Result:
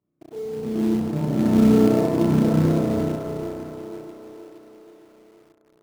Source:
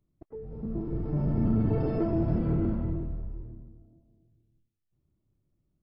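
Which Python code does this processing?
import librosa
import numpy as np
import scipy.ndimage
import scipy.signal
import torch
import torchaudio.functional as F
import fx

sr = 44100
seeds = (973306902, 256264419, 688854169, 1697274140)

p1 = fx.bandpass_edges(x, sr, low_hz=180.0, high_hz=2100.0)
p2 = fx.echo_split(p1, sr, split_hz=350.0, low_ms=163, high_ms=472, feedback_pct=52, wet_db=-4)
p3 = fx.rev_spring(p2, sr, rt60_s=1.6, pass_ms=(32,), chirp_ms=25, drr_db=-5.0)
p4 = fx.quant_companded(p3, sr, bits=4)
y = p3 + (p4 * 10.0 ** (-5.5 / 20.0))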